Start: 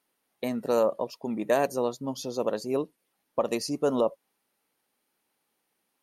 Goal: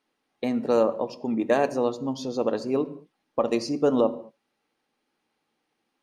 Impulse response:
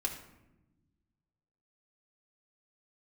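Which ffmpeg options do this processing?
-filter_complex "[0:a]lowpass=5400,asplit=2[s0][s1];[s1]equalizer=f=200:w=0.65:g=7.5[s2];[1:a]atrim=start_sample=2205,afade=t=out:st=0.28:d=0.01,atrim=end_sample=12789[s3];[s2][s3]afir=irnorm=-1:irlink=0,volume=0.398[s4];[s0][s4]amix=inputs=2:normalize=0,volume=0.891"

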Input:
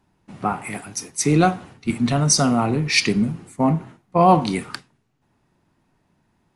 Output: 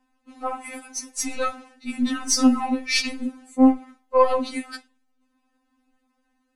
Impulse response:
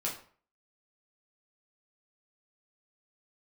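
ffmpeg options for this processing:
-af "aeval=exprs='0.668*(cos(1*acos(clip(val(0)/0.668,-1,1)))-cos(1*PI/2))+0.0299*(cos(4*acos(clip(val(0)/0.668,-1,1)))-cos(4*PI/2))':c=same,afftfilt=real='re*3.46*eq(mod(b,12),0)':imag='im*3.46*eq(mod(b,12),0)':win_size=2048:overlap=0.75,volume=0.841"

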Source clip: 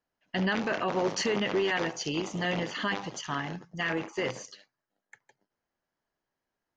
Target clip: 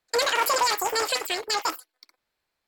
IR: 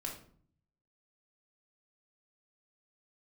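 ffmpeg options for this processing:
-af "asetrate=111573,aresample=44100,volume=1.88"

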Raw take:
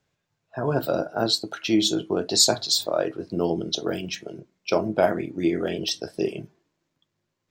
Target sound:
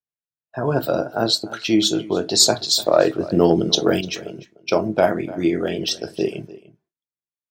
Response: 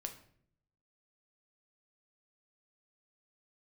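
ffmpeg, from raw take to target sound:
-filter_complex "[0:a]asettb=1/sr,asplit=3[s0][s1][s2];[s0]atrim=end=2.864[s3];[s1]atrim=start=2.86:end=4.01,asetpts=PTS-STARTPTS,afade=t=in:d=0.004:c=qsin,afade=t=out:st=1.146:d=0.004:c=qsin,acontrast=50[s4];[s2]atrim=start=4.006[s5];[s3][s4]acrossfade=d=0.004:c1=hsin:c2=qsin[s6];[s6][s5]acrossfade=d=0.004:c1=qsin:c2=hsin,agate=range=0.0224:threshold=0.00447:ratio=3:detection=peak,asplit=2[s7][s8];[s8]adelay=297.4,volume=0.126,highshelf=f=4000:g=-6.69[s9];[s7][s9]amix=inputs=2:normalize=0,volume=1.5"

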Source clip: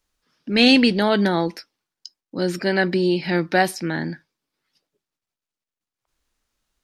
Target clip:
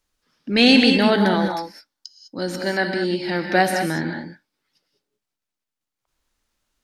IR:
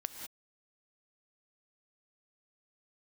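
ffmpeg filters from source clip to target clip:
-filter_complex "[0:a]asettb=1/sr,asplit=3[s0][s1][s2];[s0]atrim=end=1.344[s3];[s1]atrim=start=1.34:end=3.5,asetpts=PTS-STARTPTS,afade=t=in:d=0.004:c=qsin,afade=t=out:st=2.156:d=0.004:c=qsin,equalizer=f=160:t=o:w=0.67:g=-7,equalizer=f=400:t=o:w=0.67:g=-5,equalizer=f=2500:t=o:w=0.67:g=-5[s4];[s2]atrim=start=3.496[s5];[s3][s4]acrossfade=d=0.004:c1=hsin:c2=qsin[s6];[s6][s5]acrossfade=d=0.004:c1=qsin:c2=hsin[s7];[1:a]atrim=start_sample=2205,asetrate=42336,aresample=44100[s8];[s7][s8]afir=irnorm=-1:irlink=0,volume=1.26"

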